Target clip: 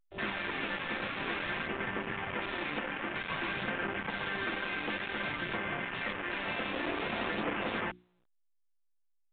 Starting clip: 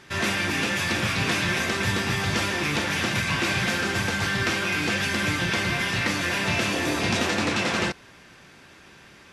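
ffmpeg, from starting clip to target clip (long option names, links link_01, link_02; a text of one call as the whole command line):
ffmpeg -i in.wav -af "highpass=220,lowpass=2500,aresample=11025,volume=23dB,asoftclip=hard,volume=-23dB,aresample=44100,acrusher=bits=3:mix=0:aa=0.5,aphaser=in_gain=1:out_gain=1:delay=3.9:decay=0.25:speed=0.53:type=sinusoidal,asoftclip=type=tanh:threshold=-18dB,alimiter=level_in=0.5dB:limit=-24dB:level=0:latency=1:release=18,volume=-0.5dB,afwtdn=0.01,bandreject=frequency=60:width_type=h:width=6,bandreject=frequency=120:width_type=h:width=6,bandreject=frequency=180:width_type=h:width=6,bandreject=frequency=240:width_type=h:width=6,bandreject=frequency=300:width_type=h:width=6,bandreject=frequency=360:width_type=h:width=6" -ar 8000 -c:a pcm_alaw out.wav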